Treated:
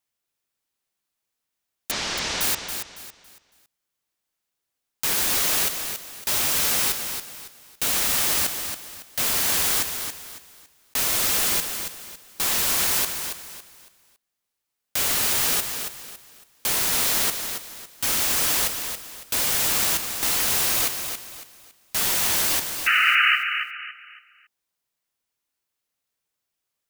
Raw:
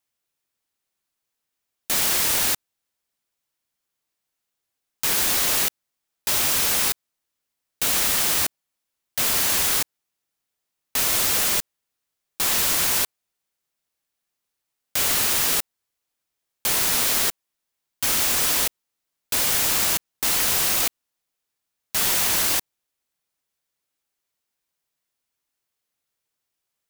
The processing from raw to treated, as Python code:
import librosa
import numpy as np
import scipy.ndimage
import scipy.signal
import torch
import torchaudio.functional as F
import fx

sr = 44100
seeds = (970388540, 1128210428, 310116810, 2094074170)

p1 = fx.lowpass(x, sr, hz=6000.0, slope=24, at=(1.91, 2.41))
p2 = fx.spec_paint(p1, sr, seeds[0], shape='noise', start_s=22.86, length_s=0.5, low_hz=1200.0, high_hz=3000.0, level_db=-17.0)
p3 = p2 + fx.echo_feedback(p2, sr, ms=278, feedback_pct=32, wet_db=-7.5, dry=0)
y = F.gain(torch.from_numpy(p3), -1.5).numpy()